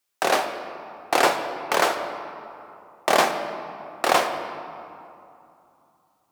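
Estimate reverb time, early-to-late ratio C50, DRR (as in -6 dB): 2.8 s, 7.5 dB, 5.0 dB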